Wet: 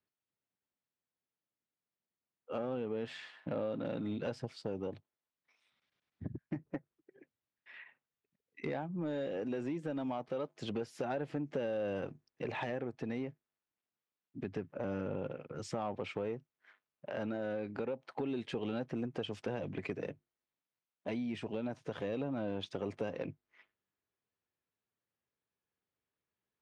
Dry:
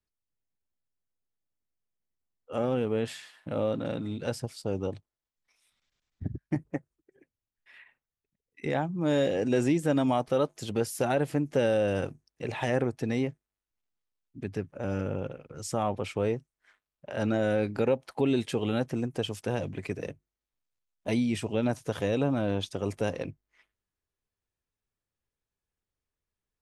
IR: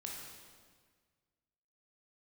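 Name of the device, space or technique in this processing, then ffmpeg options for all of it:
AM radio: -af "highpass=140,lowpass=3.4k,acompressor=threshold=-34dB:ratio=5,asoftclip=type=tanh:threshold=-27.5dB,tremolo=f=0.26:d=0.19,volume=1.5dB"

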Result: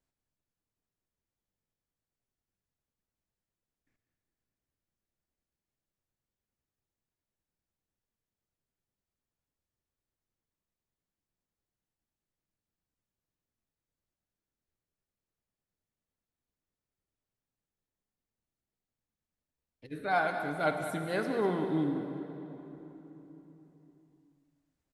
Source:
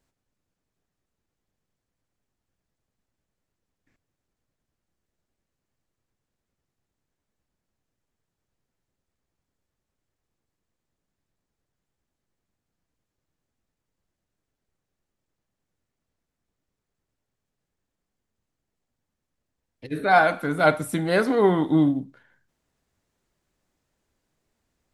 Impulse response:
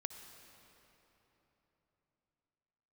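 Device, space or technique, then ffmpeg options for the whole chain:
cave: -filter_complex "[0:a]aecho=1:1:196:0.266[a];[1:a]atrim=start_sample=2205[b];[a][b]afir=irnorm=-1:irlink=0,volume=-8.5dB"

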